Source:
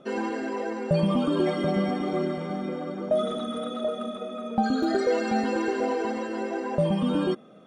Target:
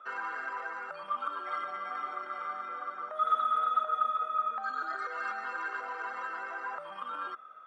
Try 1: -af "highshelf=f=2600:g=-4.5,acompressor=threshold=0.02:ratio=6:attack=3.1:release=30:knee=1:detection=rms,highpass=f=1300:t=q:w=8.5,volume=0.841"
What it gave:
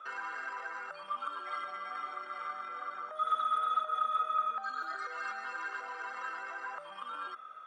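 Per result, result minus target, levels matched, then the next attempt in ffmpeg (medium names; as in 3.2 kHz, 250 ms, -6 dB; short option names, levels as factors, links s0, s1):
compression: peak gain reduction +5.5 dB; 4 kHz band +4.5 dB
-af "highshelf=f=2600:g=-4.5,acompressor=threshold=0.0398:ratio=6:attack=3.1:release=30:knee=1:detection=rms,highpass=f=1300:t=q:w=8.5,volume=0.841"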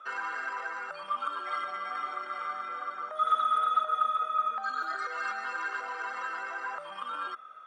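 4 kHz band +4.5 dB
-af "highshelf=f=2600:g=-15,acompressor=threshold=0.0398:ratio=6:attack=3.1:release=30:knee=1:detection=rms,highpass=f=1300:t=q:w=8.5,volume=0.841"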